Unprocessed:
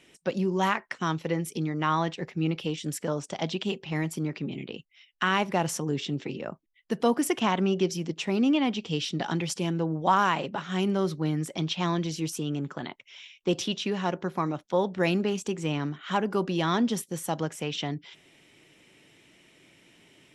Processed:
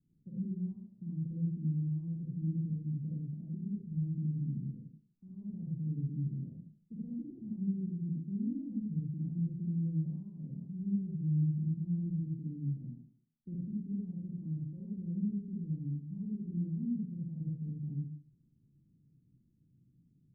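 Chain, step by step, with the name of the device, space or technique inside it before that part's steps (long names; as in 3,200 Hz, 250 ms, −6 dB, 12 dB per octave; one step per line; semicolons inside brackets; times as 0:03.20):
club heard from the street (brickwall limiter −20 dBFS, peak gain reduction 9 dB; low-pass filter 190 Hz 24 dB per octave; convolution reverb RT60 0.55 s, pre-delay 40 ms, DRR −4.5 dB)
level −6 dB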